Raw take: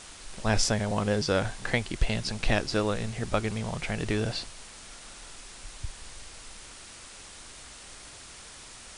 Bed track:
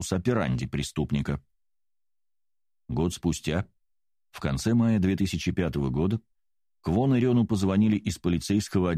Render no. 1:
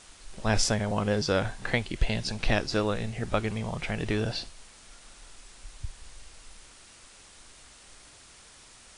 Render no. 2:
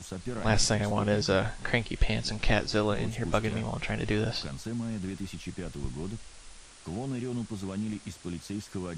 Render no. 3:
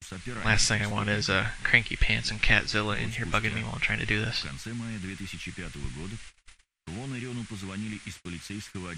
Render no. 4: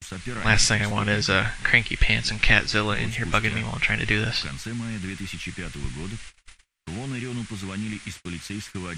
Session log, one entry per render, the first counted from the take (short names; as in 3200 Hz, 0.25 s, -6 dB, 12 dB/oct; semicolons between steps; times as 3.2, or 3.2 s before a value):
noise print and reduce 6 dB
add bed track -11.5 dB
gate -44 dBFS, range -40 dB; EQ curve 120 Hz 0 dB, 630 Hz -7 dB, 2100 Hz +11 dB, 4800 Hz +2 dB
gain +4.5 dB; limiter -3 dBFS, peak gain reduction 3 dB